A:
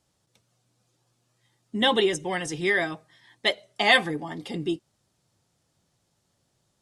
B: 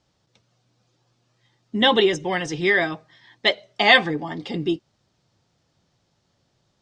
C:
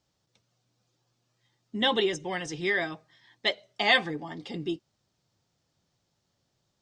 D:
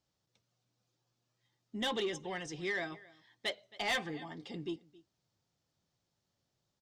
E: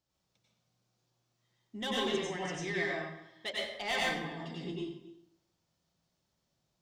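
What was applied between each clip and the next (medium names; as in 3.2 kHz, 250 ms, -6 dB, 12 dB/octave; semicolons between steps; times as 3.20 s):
low-pass 6 kHz 24 dB/octave; trim +4.5 dB
treble shelf 7.8 kHz +10.5 dB; trim -8.5 dB
delay 269 ms -23 dB; saturation -20.5 dBFS, distortion -12 dB; trim -7 dB
reverberation RT60 0.75 s, pre-delay 87 ms, DRR -5 dB; trim -3 dB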